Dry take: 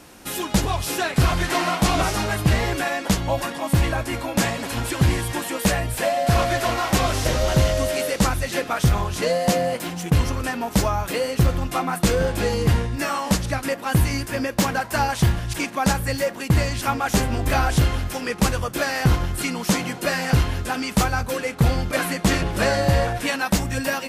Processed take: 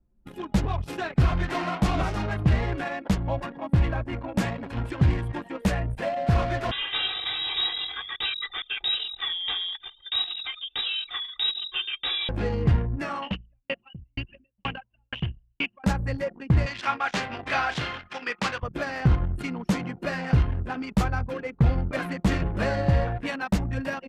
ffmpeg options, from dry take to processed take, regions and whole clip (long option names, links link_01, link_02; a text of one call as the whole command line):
ffmpeg -i in.wav -filter_complex "[0:a]asettb=1/sr,asplit=3[link_01][link_02][link_03];[link_01]atrim=end=6.714[link_04];[link_02]atrim=start=6.71:end=12.29,asetpts=PTS-STARTPTS,afade=type=in:duration=0.004:curve=qsin,afade=type=out:start_time=5.576:duration=0.004:curve=qsin,highpass=50,aecho=1:1:2.6:0.8,atrim=end_sample=246078,lowpass=frequency=3300:width_type=q:width=0.5098,lowpass=frequency=3300:width_type=q:width=0.6013,lowpass=frequency=3300:width_type=q:width=0.9,lowpass=frequency=3300:width_type=q:width=2.563,afreqshift=-3900[link_05];[link_03]atrim=start=12.286[link_06];[link_04][link_05]acrossfade=duration=0.004:curve1=hsin:curve2=qsin[link_07];[link_07][link_06]acrossfade=duration=0.004:curve1=qsin:curve2=hsin,asettb=1/sr,asplit=3[link_08][link_09][link_10];[link_08]atrim=end=13.224[link_11];[link_09]atrim=start=13.22:end=15.84,asetpts=PTS-STARTPTS,afade=type=in:duration=0.004:curve=qsin,afade=type=out:start_time=2.616:duration=0.004:curve=qsin,lowpass=frequency=2900:width_type=q:width=10,aeval=exprs='val(0)*pow(10,-36*if(lt(mod(2.1*n/s,1),2*abs(2.1)/1000),1-mod(2.1*n/s,1)/(2*abs(2.1)/1000),(mod(2.1*n/s,1)-2*abs(2.1)/1000)/(1-2*abs(2.1)/1000))/20)':channel_layout=same[link_12];[link_10]atrim=start=15.836[link_13];[link_11][link_12]acrossfade=duration=0.004:curve1=hsin:curve2=qsin[link_14];[link_14][link_13]acrossfade=duration=0.004:curve1=qsin:curve2=hsin,asettb=1/sr,asplit=3[link_15][link_16][link_17];[link_15]atrim=end=16.664[link_18];[link_16]atrim=start=16.66:end=18.63,asetpts=PTS-STARTPTS,afade=type=in:duration=0.004:curve=qsin,afade=type=out:start_time=1.966:duration=0.004:curve=qsin,highpass=150,lowpass=4600,tiltshelf=frequency=670:gain=-9.5,asplit=2[link_19][link_20];[link_20]adelay=32,volume=-13.5dB[link_21];[link_19][link_21]amix=inputs=2:normalize=0,atrim=end_sample=86877[link_22];[link_17]atrim=start=18.626[link_23];[link_18][link_22]acrossfade=duration=0.004:curve1=hsin:curve2=qsin[link_24];[link_24][link_23]acrossfade=duration=0.004:curve1=qsin:curve2=hsin,bass=frequency=250:gain=5,treble=frequency=4000:gain=-6,anlmdn=158,highshelf=frequency=6100:gain=-4.5,volume=-6.5dB" out.wav